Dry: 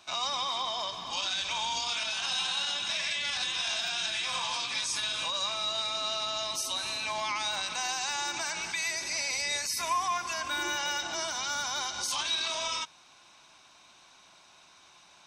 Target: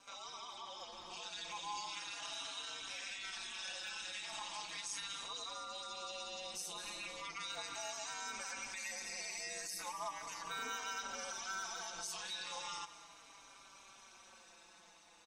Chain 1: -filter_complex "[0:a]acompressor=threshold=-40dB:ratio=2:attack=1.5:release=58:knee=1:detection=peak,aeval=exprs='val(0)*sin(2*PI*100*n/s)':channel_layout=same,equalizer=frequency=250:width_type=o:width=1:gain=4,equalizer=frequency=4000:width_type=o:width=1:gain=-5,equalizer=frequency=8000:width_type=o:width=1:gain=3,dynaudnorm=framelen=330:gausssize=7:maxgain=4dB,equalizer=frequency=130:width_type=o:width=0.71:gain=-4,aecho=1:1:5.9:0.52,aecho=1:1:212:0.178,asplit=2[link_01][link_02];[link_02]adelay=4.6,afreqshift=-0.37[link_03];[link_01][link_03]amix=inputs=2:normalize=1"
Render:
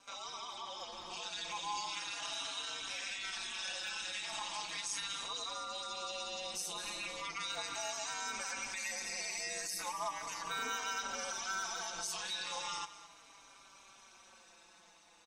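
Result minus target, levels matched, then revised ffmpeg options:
downward compressor: peak gain reduction −4 dB
-filter_complex "[0:a]acompressor=threshold=-48dB:ratio=2:attack=1.5:release=58:knee=1:detection=peak,aeval=exprs='val(0)*sin(2*PI*100*n/s)':channel_layout=same,equalizer=frequency=250:width_type=o:width=1:gain=4,equalizer=frequency=4000:width_type=o:width=1:gain=-5,equalizer=frequency=8000:width_type=o:width=1:gain=3,dynaudnorm=framelen=330:gausssize=7:maxgain=4dB,equalizer=frequency=130:width_type=o:width=0.71:gain=-4,aecho=1:1:5.9:0.52,aecho=1:1:212:0.178,asplit=2[link_01][link_02];[link_02]adelay=4.6,afreqshift=-0.37[link_03];[link_01][link_03]amix=inputs=2:normalize=1"

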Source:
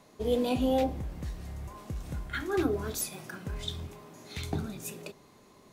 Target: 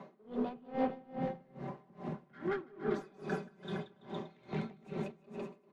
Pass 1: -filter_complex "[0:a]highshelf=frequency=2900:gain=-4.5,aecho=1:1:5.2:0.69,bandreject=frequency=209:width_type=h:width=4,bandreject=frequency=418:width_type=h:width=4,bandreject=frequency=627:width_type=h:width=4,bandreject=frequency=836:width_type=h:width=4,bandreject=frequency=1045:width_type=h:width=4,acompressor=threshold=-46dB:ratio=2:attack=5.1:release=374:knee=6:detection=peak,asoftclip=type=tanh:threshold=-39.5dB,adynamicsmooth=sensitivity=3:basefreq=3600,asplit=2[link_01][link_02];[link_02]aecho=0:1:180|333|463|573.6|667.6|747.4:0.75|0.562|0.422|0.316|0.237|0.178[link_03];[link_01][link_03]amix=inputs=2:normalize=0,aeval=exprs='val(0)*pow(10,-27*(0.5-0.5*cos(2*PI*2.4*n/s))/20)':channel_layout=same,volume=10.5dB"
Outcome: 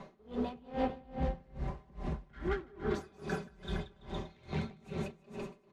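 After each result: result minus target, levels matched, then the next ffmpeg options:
4,000 Hz band +4.0 dB; 125 Hz band +3.5 dB
-filter_complex "[0:a]highshelf=frequency=2900:gain=-16,aecho=1:1:5.2:0.69,bandreject=frequency=209:width_type=h:width=4,bandreject=frequency=418:width_type=h:width=4,bandreject=frequency=627:width_type=h:width=4,bandreject=frequency=836:width_type=h:width=4,bandreject=frequency=1045:width_type=h:width=4,acompressor=threshold=-46dB:ratio=2:attack=5.1:release=374:knee=6:detection=peak,asoftclip=type=tanh:threshold=-39.5dB,adynamicsmooth=sensitivity=3:basefreq=3600,asplit=2[link_01][link_02];[link_02]aecho=0:1:180|333|463|573.6|667.6|747.4:0.75|0.562|0.422|0.316|0.237|0.178[link_03];[link_01][link_03]amix=inputs=2:normalize=0,aeval=exprs='val(0)*pow(10,-27*(0.5-0.5*cos(2*PI*2.4*n/s))/20)':channel_layout=same,volume=10.5dB"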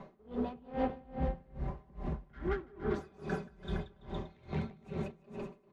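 125 Hz band +4.0 dB
-filter_complex "[0:a]highshelf=frequency=2900:gain=-16,aecho=1:1:5.2:0.69,bandreject=frequency=209:width_type=h:width=4,bandreject=frequency=418:width_type=h:width=4,bandreject=frequency=627:width_type=h:width=4,bandreject=frequency=836:width_type=h:width=4,bandreject=frequency=1045:width_type=h:width=4,acompressor=threshold=-46dB:ratio=2:attack=5.1:release=374:knee=6:detection=peak,highpass=frequency=160:width=0.5412,highpass=frequency=160:width=1.3066,asoftclip=type=tanh:threshold=-39.5dB,adynamicsmooth=sensitivity=3:basefreq=3600,asplit=2[link_01][link_02];[link_02]aecho=0:1:180|333|463|573.6|667.6|747.4:0.75|0.562|0.422|0.316|0.237|0.178[link_03];[link_01][link_03]amix=inputs=2:normalize=0,aeval=exprs='val(0)*pow(10,-27*(0.5-0.5*cos(2*PI*2.4*n/s))/20)':channel_layout=same,volume=10.5dB"

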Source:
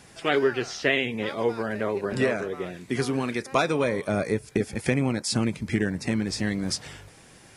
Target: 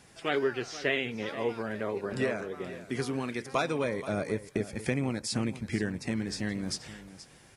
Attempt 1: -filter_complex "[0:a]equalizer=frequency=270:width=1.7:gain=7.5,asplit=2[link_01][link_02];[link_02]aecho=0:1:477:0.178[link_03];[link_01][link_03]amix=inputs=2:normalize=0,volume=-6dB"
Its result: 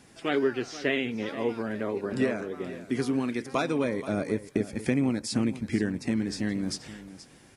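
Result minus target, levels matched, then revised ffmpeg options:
250 Hz band +3.0 dB
-filter_complex "[0:a]asplit=2[link_01][link_02];[link_02]aecho=0:1:477:0.178[link_03];[link_01][link_03]amix=inputs=2:normalize=0,volume=-6dB"

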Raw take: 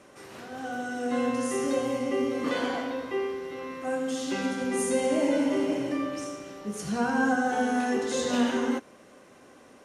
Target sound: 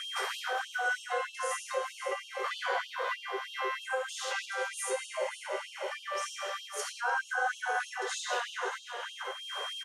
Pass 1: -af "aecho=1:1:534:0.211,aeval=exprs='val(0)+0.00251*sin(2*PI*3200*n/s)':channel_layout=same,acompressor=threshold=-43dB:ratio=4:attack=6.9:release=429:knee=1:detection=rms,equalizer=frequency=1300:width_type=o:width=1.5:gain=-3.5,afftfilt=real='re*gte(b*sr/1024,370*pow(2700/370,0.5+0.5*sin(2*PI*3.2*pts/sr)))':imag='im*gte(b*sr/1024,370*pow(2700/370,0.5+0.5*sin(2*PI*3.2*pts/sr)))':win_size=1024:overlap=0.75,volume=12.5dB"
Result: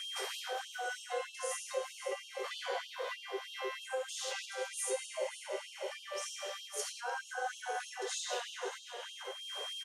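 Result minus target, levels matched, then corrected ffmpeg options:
1,000 Hz band −2.5 dB
-af "aecho=1:1:534:0.211,aeval=exprs='val(0)+0.00251*sin(2*PI*3200*n/s)':channel_layout=same,acompressor=threshold=-43dB:ratio=4:attack=6.9:release=429:knee=1:detection=rms,equalizer=frequency=1300:width_type=o:width=1.5:gain=8,afftfilt=real='re*gte(b*sr/1024,370*pow(2700/370,0.5+0.5*sin(2*PI*3.2*pts/sr)))':imag='im*gte(b*sr/1024,370*pow(2700/370,0.5+0.5*sin(2*PI*3.2*pts/sr)))':win_size=1024:overlap=0.75,volume=12.5dB"

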